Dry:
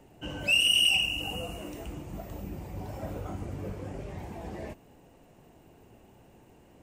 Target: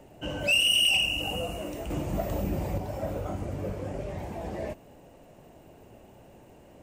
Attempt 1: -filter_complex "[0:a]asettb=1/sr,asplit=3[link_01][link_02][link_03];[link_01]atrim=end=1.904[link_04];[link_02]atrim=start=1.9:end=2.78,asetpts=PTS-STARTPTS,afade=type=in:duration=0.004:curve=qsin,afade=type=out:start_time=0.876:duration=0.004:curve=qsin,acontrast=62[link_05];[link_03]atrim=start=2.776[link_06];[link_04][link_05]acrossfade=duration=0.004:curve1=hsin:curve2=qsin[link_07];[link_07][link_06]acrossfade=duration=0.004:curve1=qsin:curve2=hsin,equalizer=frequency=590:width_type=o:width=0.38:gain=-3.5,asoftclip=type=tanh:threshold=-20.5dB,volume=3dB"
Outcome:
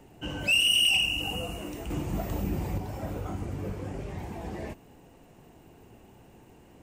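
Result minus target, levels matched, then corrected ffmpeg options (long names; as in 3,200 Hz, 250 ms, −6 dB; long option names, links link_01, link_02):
500 Hz band −5.0 dB
-filter_complex "[0:a]asettb=1/sr,asplit=3[link_01][link_02][link_03];[link_01]atrim=end=1.904[link_04];[link_02]atrim=start=1.9:end=2.78,asetpts=PTS-STARTPTS,afade=type=in:duration=0.004:curve=qsin,afade=type=out:start_time=0.876:duration=0.004:curve=qsin,acontrast=62[link_05];[link_03]atrim=start=2.776[link_06];[link_04][link_05]acrossfade=duration=0.004:curve1=hsin:curve2=qsin[link_07];[link_07][link_06]acrossfade=duration=0.004:curve1=qsin:curve2=hsin,equalizer=frequency=590:width_type=o:width=0.38:gain=7,asoftclip=type=tanh:threshold=-20.5dB,volume=3dB"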